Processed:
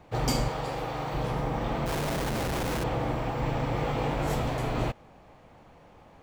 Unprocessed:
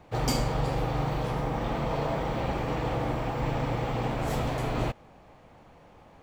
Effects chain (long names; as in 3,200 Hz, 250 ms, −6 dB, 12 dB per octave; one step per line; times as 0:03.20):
0:00.49–0:01.14: low-shelf EQ 240 Hz −11 dB
0:01.86–0:02.84: comparator with hysteresis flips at −36 dBFS
0:03.73–0:04.34: double-tracking delay 20 ms −4 dB